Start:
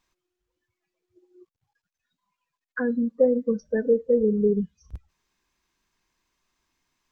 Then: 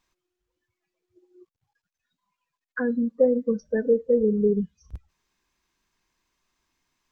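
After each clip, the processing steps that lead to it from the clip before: nothing audible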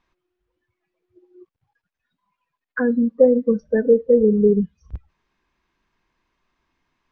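Bessel low-pass 2400 Hz, order 2; gain +6 dB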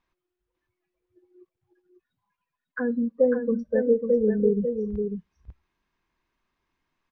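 echo 0.547 s -6 dB; gain -7 dB

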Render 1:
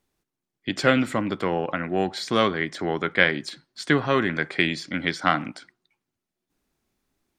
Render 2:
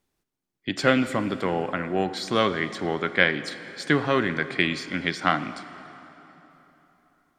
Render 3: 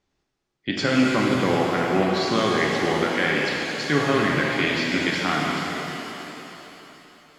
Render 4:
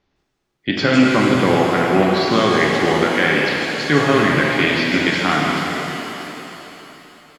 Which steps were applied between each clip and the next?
plate-style reverb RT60 3.7 s, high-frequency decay 0.75×, DRR 12 dB; gain -1 dB
LPF 6500 Hz 24 dB/oct; limiter -13 dBFS, peak gain reduction 10.5 dB; shimmer reverb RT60 3.1 s, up +7 st, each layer -8 dB, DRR -2 dB; gain +1.5 dB
bands offset in time lows, highs 0.16 s, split 5900 Hz; gain +6 dB

